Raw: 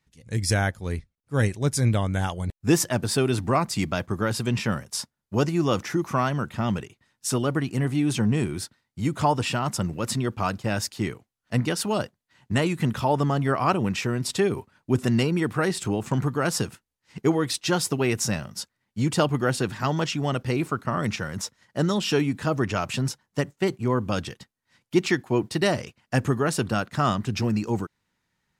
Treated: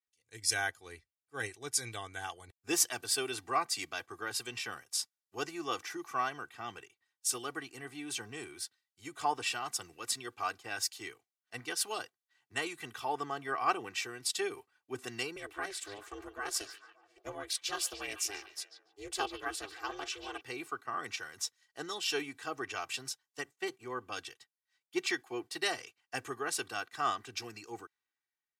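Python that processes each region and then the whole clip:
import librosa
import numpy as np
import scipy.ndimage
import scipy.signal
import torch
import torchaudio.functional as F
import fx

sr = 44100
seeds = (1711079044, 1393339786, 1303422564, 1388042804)

y = fx.chain(x, sr, fx.ring_mod(carrier_hz=200.0),
    fx.echo_stepped(ms=144, hz=3400.0, octaves=-0.7, feedback_pct=70, wet_db=-7.0), at=(15.36, 20.41))
y = fx.highpass(y, sr, hz=1500.0, slope=6)
y = y + 0.72 * np.pad(y, (int(2.6 * sr / 1000.0), 0))[:len(y)]
y = fx.band_widen(y, sr, depth_pct=40)
y = F.gain(torch.from_numpy(y), -6.5).numpy()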